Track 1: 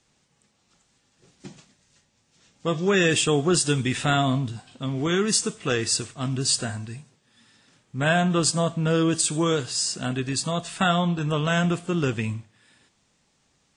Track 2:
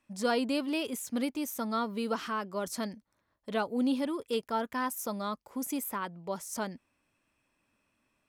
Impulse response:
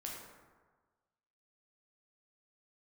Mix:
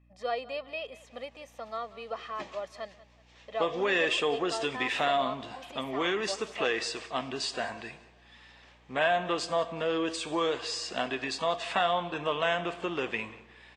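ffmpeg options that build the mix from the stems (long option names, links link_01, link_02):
-filter_complex "[0:a]acompressor=threshold=-28dB:ratio=3,aeval=exprs='0.211*sin(PI/2*1.58*val(0)/0.211)':channel_layout=same,adelay=950,volume=1dB,asplit=3[link_01][link_02][link_03];[link_02]volume=-12.5dB[link_04];[link_03]volume=-20.5dB[link_05];[1:a]aecho=1:1:1.6:0.71,volume=-0.5dB,asplit=2[link_06][link_07];[link_07]volume=-18.5dB[link_08];[2:a]atrim=start_sample=2205[link_09];[link_04][link_09]afir=irnorm=-1:irlink=0[link_10];[link_05][link_08]amix=inputs=2:normalize=0,aecho=0:1:187|374|561|748|935:1|0.34|0.116|0.0393|0.0134[link_11];[link_01][link_06][link_10][link_11]amix=inputs=4:normalize=0,highpass=640,lowpass=2500,equalizer=frequency=1400:width=4:gain=-10.5,aeval=exprs='val(0)+0.000891*(sin(2*PI*60*n/s)+sin(2*PI*2*60*n/s)/2+sin(2*PI*3*60*n/s)/3+sin(2*PI*4*60*n/s)/4+sin(2*PI*5*60*n/s)/5)':channel_layout=same"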